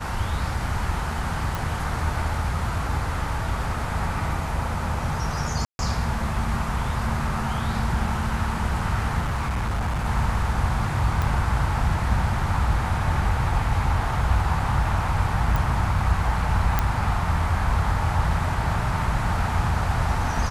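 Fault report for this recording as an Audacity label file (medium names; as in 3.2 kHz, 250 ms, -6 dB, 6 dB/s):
1.550000	1.550000	pop
5.650000	5.790000	dropout 141 ms
9.200000	10.060000	clipped -21.5 dBFS
11.220000	11.220000	pop -12 dBFS
15.560000	15.560000	pop
16.790000	16.790000	pop -7 dBFS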